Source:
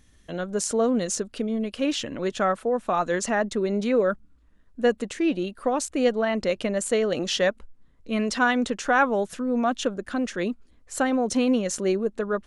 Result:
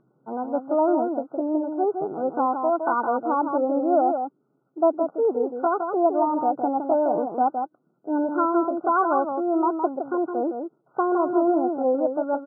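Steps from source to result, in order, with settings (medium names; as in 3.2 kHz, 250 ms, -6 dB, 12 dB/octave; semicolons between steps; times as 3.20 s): pitch shift +5.5 st; FFT band-pass 120–1500 Hz; echo from a far wall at 28 m, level -6 dB; trim +1.5 dB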